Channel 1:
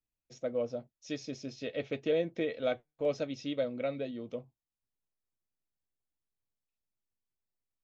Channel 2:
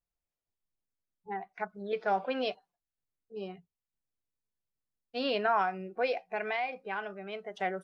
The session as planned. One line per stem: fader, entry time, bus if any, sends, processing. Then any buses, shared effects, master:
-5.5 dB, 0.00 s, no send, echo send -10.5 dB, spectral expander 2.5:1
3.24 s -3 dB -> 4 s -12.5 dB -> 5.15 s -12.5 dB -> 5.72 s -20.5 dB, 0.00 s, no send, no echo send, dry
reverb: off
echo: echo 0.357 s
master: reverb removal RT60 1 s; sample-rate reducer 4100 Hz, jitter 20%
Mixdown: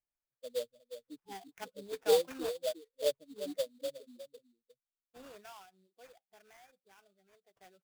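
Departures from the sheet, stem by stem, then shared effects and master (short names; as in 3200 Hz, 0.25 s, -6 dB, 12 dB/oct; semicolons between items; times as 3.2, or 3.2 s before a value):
stem 1 -5.5 dB -> +1.5 dB; stem 2 -3.0 dB -> -9.0 dB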